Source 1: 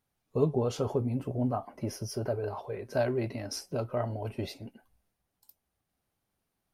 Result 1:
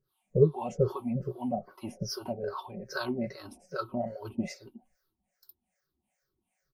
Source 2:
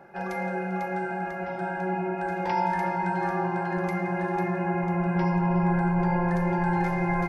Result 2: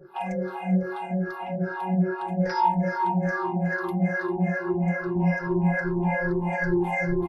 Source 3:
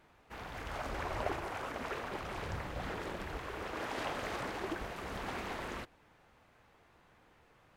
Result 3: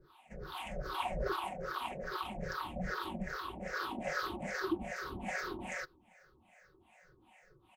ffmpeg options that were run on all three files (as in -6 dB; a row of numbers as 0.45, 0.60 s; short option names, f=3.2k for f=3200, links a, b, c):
-filter_complex "[0:a]afftfilt=real='re*pow(10,21/40*sin(2*PI*(0.57*log(max(b,1)*sr/1024/100)/log(2)-(-2.4)*(pts-256)/sr)))':imag='im*pow(10,21/40*sin(2*PI*(0.57*log(max(b,1)*sr/1024/100)/log(2)-(-2.4)*(pts-256)/sr)))':win_size=1024:overlap=0.75,acrossover=split=570[a][b];[a]aeval=exprs='val(0)*(1-1/2+1/2*cos(2*PI*2.5*n/s))':c=same[c];[b]aeval=exprs='val(0)*(1-1/2-1/2*cos(2*PI*2.5*n/s))':c=same[d];[c][d]amix=inputs=2:normalize=0,aecho=1:1:5.4:0.56"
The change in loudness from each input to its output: 0.0, +1.0, +1.0 LU